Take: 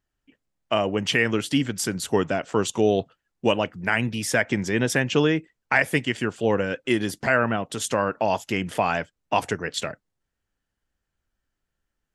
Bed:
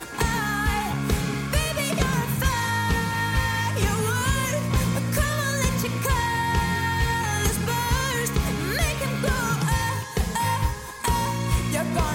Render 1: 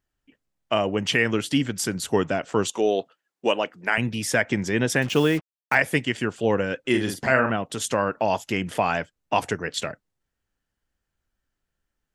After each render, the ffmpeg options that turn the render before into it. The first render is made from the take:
-filter_complex "[0:a]asettb=1/sr,asplit=3[a][b][c];[a]atrim=end=2.694[d];[b]atrim=start=2.69:end=3.98,asetpts=PTS-STARTPTS,afade=t=in:d=0.004:c=qsin,afade=t=out:st=1.286:d=0.004:c=qsin,highpass=320[e];[c]atrim=start=3.976[f];[d][e]acrossfade=d=0.004:c1=hsin:c2=qsin[g];[g][f]acrossfade=d=0.004:c1=qsin:c2=hsin,asettb=1/sr,asplit=3[h][i][j];[h]atrim=end=5.024[k];[i]atrim=start=5.02:end=5.75,asetpts=PTS-STARTPTS,afade=t=in:d=0.004:c=qsin,afade=t=out:st=0.726:d=0.004:c=qsin,acrusher=bits=5:mix=0:aa=0.5[l];[j]atrim=start=5.746[m];[k][l]acrossfade=d=0.004:c1=hsin:c2=qsin[n];[n][m]acrossfade=d=0.004:c1=qsin:c2=hsin,asettb=1/sr,asplit=3[o][p][q];[o]atrim=end=6.894[r];[p]atrim=start=6.89:end=7.5,asetpts=PTS-STARTPTS,afade=t=in:d=0.004:c=qsin,afade=t=out:st=0.606:d=0.004:c=qsin,asplit=2[s][t];[t]adelay=46,volume=-6dB[u];[s][u]amix=inputs=2:normalize=0,atrim=end_sample=26901[v];[q]atrim=start=7.496[w];[r][v]acrossfade=d=0.004:c1=hsin:c2=qsin[x];[x][w]acrossfade=d=0.004:c1=qsin:c2=hsin"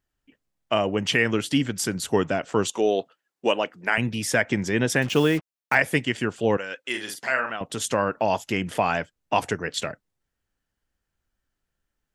-filter_complex "[0:a]asettb=1/sr,asplit=3[a][b][c];[a]atrim=end=6.574[d];[b]atrim=start=6.57:end=7.61,asetpts=PTS-STARTPTS,afade=t=in:d=0.004:c=qsin,afade=t=out:st=1.036:d=0.004:c=qsin,highpass=f=1.4k:p=1[e];[c]atrim=start=7.606[f];[d][e]acrossfade=d=0.004:c1=hsin:c2=qsin[g];[g][f]acrossfade=d=0.004:c1=qsin:c2=hsin"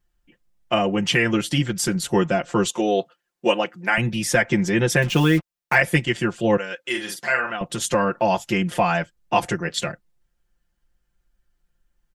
-af "lowshelf=f=86:g=11.5,aecho=1:1:5.7:0.93"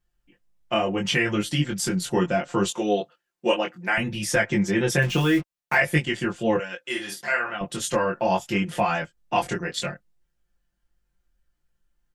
-af "flanger=delay=19.5:depth=2.7:speed=0.68"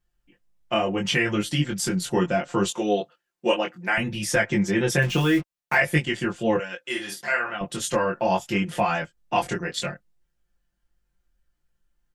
-af anull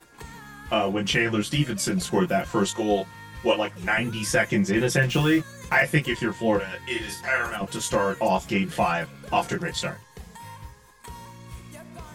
-filter_complex "[1:a]volume=-18dB[a];[0:a][a]amix=inputs=2:normalize=0"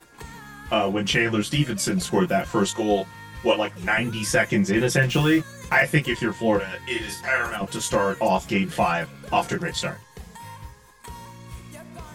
-af "volume=1.5dB"

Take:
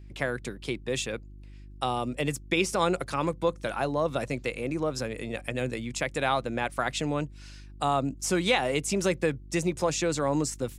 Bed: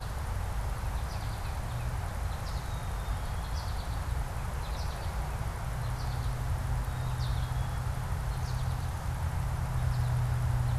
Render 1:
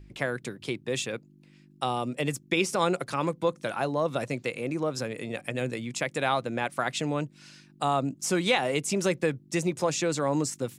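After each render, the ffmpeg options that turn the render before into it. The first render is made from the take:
-af "bandreject=f=50:t=h:w=4,bandreject=f=100:t=h:w=4"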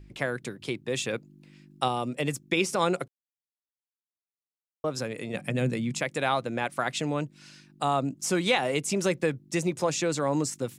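-filter_complex "[0:a]asettb=1/sr,asplit=3[a][b][c];[a]atrim=end=5.344[d];[b]atrim=start=5.34:end=6.01,asetpts=PTS-STARTPTS,afade=t=in:d=0.004:c=qsin,afade=t=out:st=0.666:d=0.004:c=qsin,equalizer=f=170:w=1.5:g=12.5[e];[c]atrim=start=6.006[f];[d][e]acrossfade=d=0.004:c1=hsin:c2=qsin[g];[g][f]acrossfade=d=0.004:c1=qsin:c2=hsin,asplit=5[h][i][j][k][l];[h]atrim=end=1.052[m];[i]atrim=start=1.048:end=1.882,asetpts=PTS-STARTPTS,volume=3dB[n];[j]atrim=start=1.878:end=3.08,asetpts=PTS-STARTPTS,afade=t=out:st=1.198:d=0.004:c=hsin[o];[k]atrim=start=3.08:end=4.84,asetpts=PTS-STARTPTS,volume=0[p];[l]atrim=start=4.84,asetpts=PTS-STARTPTS,afade=t=in:d=0.004:c=hsin[q];[m][n]acrossfade=d=0.004:c1=hsin:c2=hsin[r];[o][p][q]concat=n=3:v=0:a=1[s];[r][s]acrossfade=d=0.004:c1=hsin:c2=hsin"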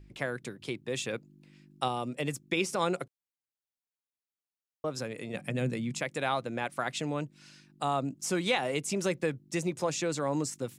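-af "volume=-4dB"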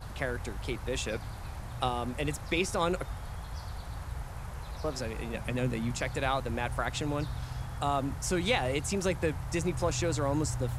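-filter_complex "[1:a]volume=-5.5dB[a];[0:a][a]amix=inputs=2:normalize=0"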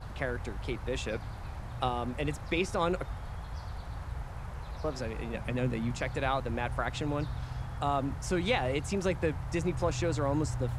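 -af "lowpass=f=3.4k:p=1"

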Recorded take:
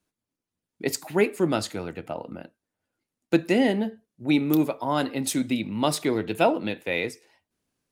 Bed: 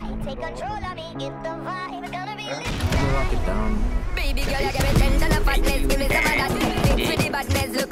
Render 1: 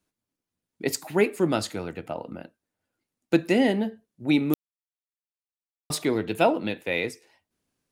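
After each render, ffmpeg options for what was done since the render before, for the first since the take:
-filter_complex "[0:a]asplit=3[a][b][c];[a]atrim=end=4.54,asetpts=PTS-STARTPTS,afade=t=out:st=4.536:d=0.004:c=hsin[d];[b]atrim=start=4.54:end=5.9,asetpts=PTS-STARTPTS,volume=0[e];[c]atrim=start=5.9,asetpts=PTS-STARTPTS,afade=t=in:d=0.004:c=hsin[f];[d][e][f]concat=n=3:v=0:a=1"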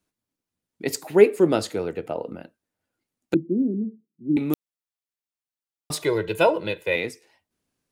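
-filter_complex "[0:a]asettb=1/sr,asplit=3[a][b][c];[a]atrim=end=0.934[d];[b]atrim=start=0.93:end=2.35,asetpts=PTS-STARTPTS,afade=t=in:d=0.004:c=qsin,afade=t=out:st=1.416:d=0.004:c=qsin,equalizer=f=440:t=o:w=0.72:g=9.5[e];[c]atrim=start=2.346[f];[d][e]acrossfade=d=0.004:c1=hsin:c2=qsin[g];[g][f]acrossfade=d=0.004:c1=qsin:c2=hsin,asettb=1/sr,asplit=3[h][i][j];[h]atrim=end=3.344[k];[i]atrim=start=3.34:end=4.37,asetpts=PTS-STARTPTS,afade=t=in:d=0.004:c=qsin,afade=t=out:st=1.026:d=0.004:c=qsin,asuperpass=centerf=230:order=8:qfactor=0.94[l];[j]atrim=start=4.366[m];[k][l]acrossfade=d=0.004:c1=hsin:c2=qsin[n];[n][m]acrossfade=d=0.004:c1=qsin:c2=hsin,asettb=1/sr,asplit=3[o][p][q];[o]atrim=end=6.024[r];[p]atrim=start=6.02:end=6.96,asetpts=PTS-STARTPTS,afade=t=in:d=0.004:c=qsin,afade=t=out:st=0.936:d=0.004:c=qsin,aecho=1:1:2:0.91,atrim=end_sample=41454[s];[q]atrim=start=6.956[t];[r][s]acrossfade=d=0.004:c1=hsin:c2=qsin[u];[u][t]acrossfade=d=0.004:c1=qsin:c2=hsin"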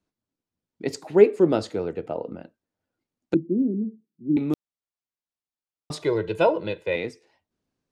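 -af "lowpass=5.1k,equalizer=f=2.4k:t=o:w=2:g=-5.5"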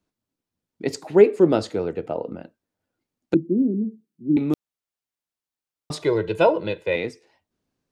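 -af "volume=2.5dB,alimiter=limit=-3dB:level=0:latency=1"

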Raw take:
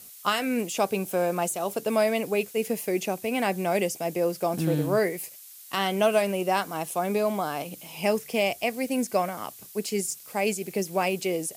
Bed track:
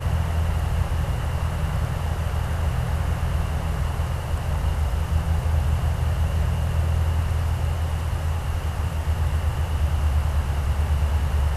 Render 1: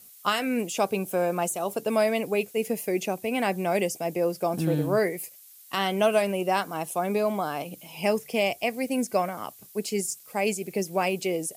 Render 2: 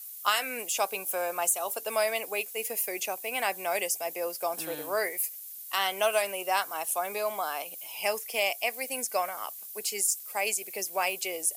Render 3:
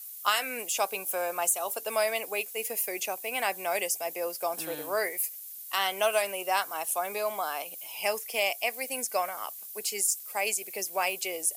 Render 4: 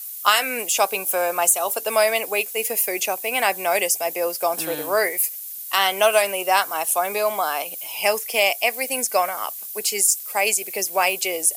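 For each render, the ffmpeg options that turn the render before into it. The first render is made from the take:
-af "afftdn=nr=6:nf=-47"
-af "highpass=740,highshelf=f=9k:g=11"
-af anull
-af "volume=9dB"

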